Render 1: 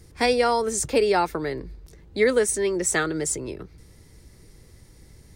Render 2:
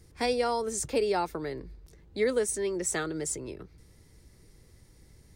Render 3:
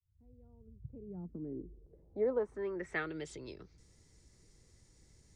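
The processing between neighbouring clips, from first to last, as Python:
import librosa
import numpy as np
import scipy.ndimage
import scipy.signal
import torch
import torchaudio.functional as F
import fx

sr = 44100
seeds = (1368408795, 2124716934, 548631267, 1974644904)

y1 = fx.dynamic_eq(x, sr, hz=1800.0, q=1.2, threshold_db=-35.0, ratio=4.0, max_db=-4)
y1 = y1 * 10.0 ** (-6.5 / 20.0)
y2 = fx.fade_in_head(y1, sr, length_s=0.67)
y2 = fx.filter_sweep_lowpass(y2, sr, from_hz=100.0, to_hz=7200.0, start_s=0.77, end_s=3.83, q=3.0)
y2 = y2 * 10.0 ** (-8.0 / 20.0)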